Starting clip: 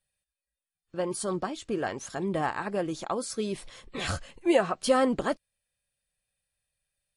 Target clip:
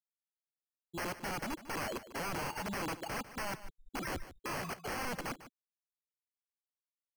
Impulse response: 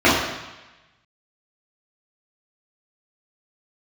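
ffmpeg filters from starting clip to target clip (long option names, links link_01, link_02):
-af "afftfilt=real='re*gte(hypot(re,im),0.0794)':imag='im*gte(hypot(re,im),0.0794)':win_size=1024:overlap=0.75,equalizer=frequency=450:width=6.7:gain=4,acompressor=threshold=-32dB:ratio=3,aresample=11025,aeval=exprs='(mod(47.3*val(0)+1,2)-1)/47.3':channel_layout=same,aresample=44100,acrusher=samples=12:mix=1:aa=0.000001,asoftclip=type=tanh:threshold=-39.5dB,aecho=1:1:149:0.188,volume=5dB"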